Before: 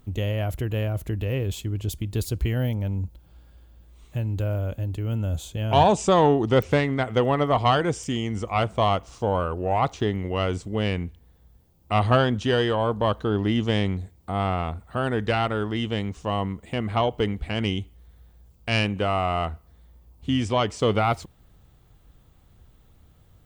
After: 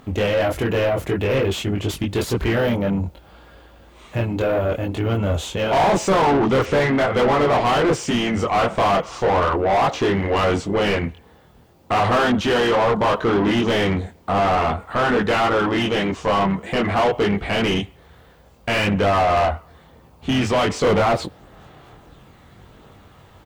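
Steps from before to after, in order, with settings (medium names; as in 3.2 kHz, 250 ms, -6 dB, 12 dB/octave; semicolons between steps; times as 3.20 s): chorus voices 4, 0.52 Hz, delay 23 ms, depth 3.1 ms; harmony voices -3 st -10 dB; overdrive pedal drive 33 dB, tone 1.5 kHz, clips at -6.5 dBFS; trim -2.5 dB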